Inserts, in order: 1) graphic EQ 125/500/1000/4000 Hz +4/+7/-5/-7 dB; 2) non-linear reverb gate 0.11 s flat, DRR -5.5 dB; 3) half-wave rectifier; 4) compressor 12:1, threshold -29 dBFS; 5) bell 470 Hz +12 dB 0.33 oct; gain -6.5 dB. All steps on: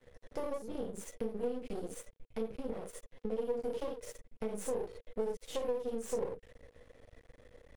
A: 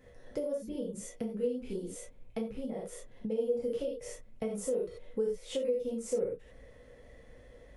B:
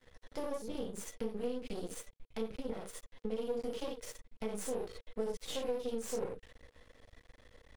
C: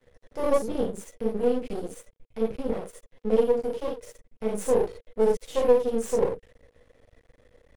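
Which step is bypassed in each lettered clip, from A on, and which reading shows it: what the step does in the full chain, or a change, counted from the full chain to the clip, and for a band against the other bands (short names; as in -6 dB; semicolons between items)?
3, 1 kHz band -10.0 dB; 1, momentary loudness spread change -2 LU; 4, mean gain reduction 7.5 dB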